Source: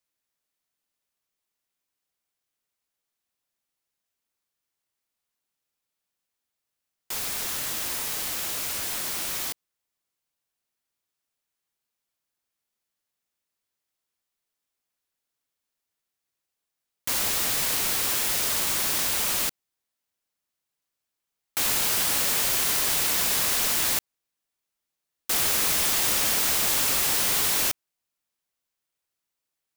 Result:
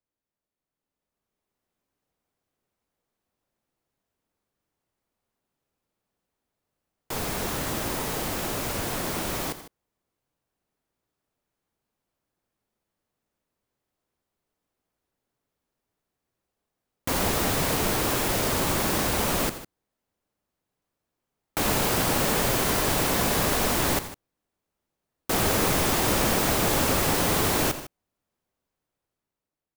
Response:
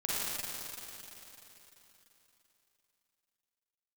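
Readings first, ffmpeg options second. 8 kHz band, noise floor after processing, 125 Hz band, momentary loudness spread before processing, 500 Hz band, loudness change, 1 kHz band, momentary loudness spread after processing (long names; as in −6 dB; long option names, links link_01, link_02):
−4.0 dB, below −85 dBFS, +13.5 dB, 8 LU, +11.0 dB, −1.5 dB, +7.0 dB, 8 LU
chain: -af "tiltshelf=frequency=1300:gain=9,dynaudnorm=framelen=330:gausssize=7:maxgain=10dB,aecho=1:1:86|153:0.2|0.168,volume=-5.5dB"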